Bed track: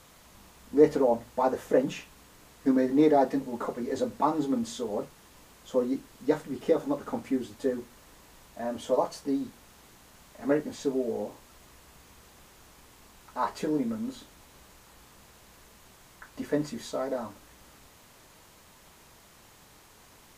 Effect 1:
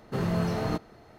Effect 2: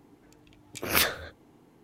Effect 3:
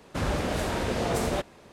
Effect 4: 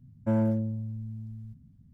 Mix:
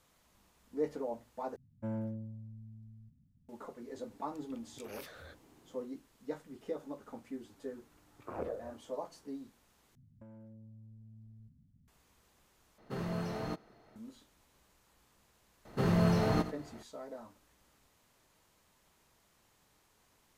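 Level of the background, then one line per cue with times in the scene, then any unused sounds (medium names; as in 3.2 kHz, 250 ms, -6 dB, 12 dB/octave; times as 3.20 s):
bed track -14.5 dB
1.56 s: replace with 4 -12.5 dB
4.03 s: add 2 -5.5 dB + compression 12:1, threshold -41 dBFS
7.45 s: add 2 -12 dB + touch-sensitive low-pass 520–1500 Hz down, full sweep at -23.5 dBFS
9.95 s: replace with 4 -10 dB + compression 8:1, threshold -41 dBFS
12.78 s: replace with 1 -8.5 dB + peaking EQ 70 Hz -8 dB 1.2 oct
15.65 s: add 1 -1 dB + echo from a far wall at 15 m, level -12 dB
not used: 3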